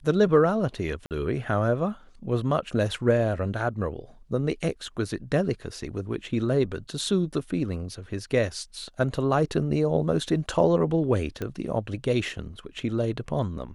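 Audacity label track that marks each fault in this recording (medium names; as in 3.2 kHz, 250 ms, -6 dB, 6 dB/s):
1.060000	1.110000	dropout 48 ms
11.420000	11.420000	pop -18 dBFS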